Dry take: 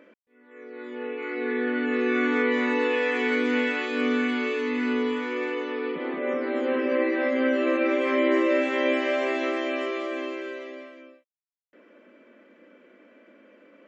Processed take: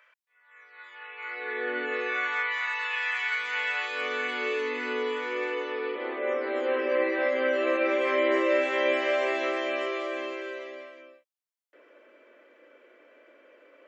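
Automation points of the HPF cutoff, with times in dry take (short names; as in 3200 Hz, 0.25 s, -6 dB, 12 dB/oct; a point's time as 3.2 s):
HPF 24 dB/oct
1.06 s 950 Hz
1.78 s 380 Hz
2.62 s 1000 Hz
3.28 s 1000 Hz
4.48 s 380 Hz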